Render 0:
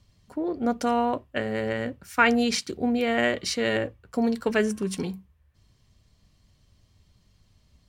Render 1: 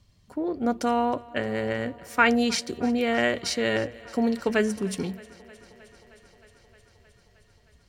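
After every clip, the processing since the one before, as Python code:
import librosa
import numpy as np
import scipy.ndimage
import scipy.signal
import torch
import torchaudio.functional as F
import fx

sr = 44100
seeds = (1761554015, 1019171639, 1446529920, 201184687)

y = fx.echo_thinned(x, sr, ms=311, feedback_pct=80, hz=180.0, wet_db=-22.0)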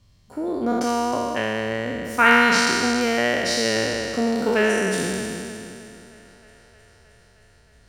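y = fx.spec_trails(x, sr, decay_s=2.75)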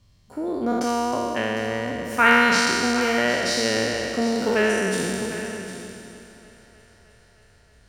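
y = x + 10.0 ** (-12.0 / 20.0) * np.pad(x, (int(754 * sr / 1000.0), 0))[:len(x)]
y = F.gain(torch.from_numpy(y), -1.0).numpy()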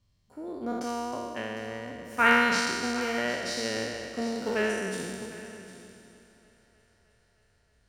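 y = fx.upward_expand(x, sr, threshold_db=-29.0, expansion=1.5)
y = F.gain(torch.from_numpy(y), -4.5).numpy()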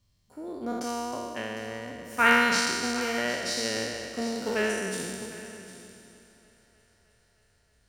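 y = fx.high_shelf(x, sr, hz=4500.0, db=6.5)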